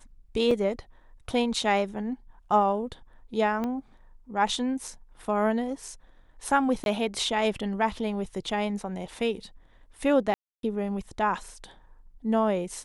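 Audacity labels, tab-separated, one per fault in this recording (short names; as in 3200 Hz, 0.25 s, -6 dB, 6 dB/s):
0.510000	0.510000	gap 3 ms
3.640000	3.640000	pop -19 dBFS
6.840000	6.860000	gap 21 ms
10.340000	10.630000	gap 0.292 s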